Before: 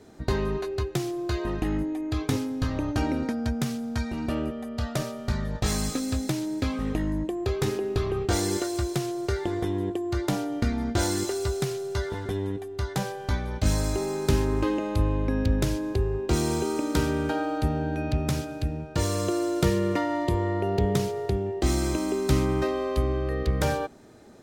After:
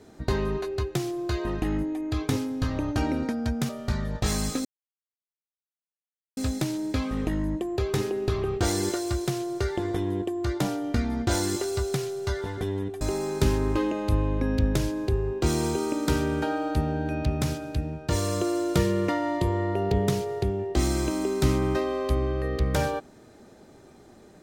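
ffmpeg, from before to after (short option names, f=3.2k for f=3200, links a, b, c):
-filter_complex "[0:a]asplit=4[a][b][c][d];[a]atrim=end=3.692[e];[b]atrim=start=5.088:end=6.05,asetpts=PTS-STARTPTS,afade=t=out:st=0.958:d=0.004:c=hsin,apad=pad_dur=1.72[f];[c]atrim=start=6.05:end=12.692,asetpts=PTS-STARTPTS,afade=t=in:d=0.004:c=hsin[g];[d]atrim=start=13.878[h];[f][g]concat=n=2:v=0:a=1[i];[e][i]acrossfade=d=0.004:c1=hsin:c2=hsin[j];[j][h]acrossfade=d=0.004:c1=hsin:c2=hsin"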